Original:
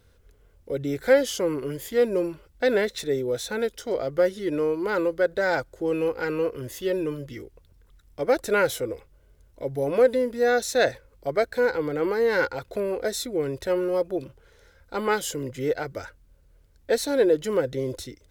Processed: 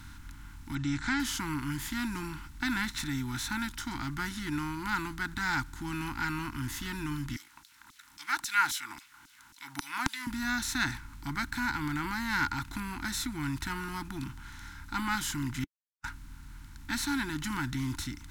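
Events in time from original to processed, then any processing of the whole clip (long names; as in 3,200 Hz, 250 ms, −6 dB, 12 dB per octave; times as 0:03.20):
0:00.75–0:01.20: Butterworth low-pass 7,600 Hz 48 dB per octave
0:07.36–0:10.27: auto-filter high-pass saw down 3.7 Hz 430–6,100 Hz
0:15.64–0:16.04: silence
whole clip: compressor on every frequency bin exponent 0.6; elliptic band-stop filter 290–900 Hz, stop band 50 dB; low-shelf EQ 140 Hz +11 dB; level −6 dB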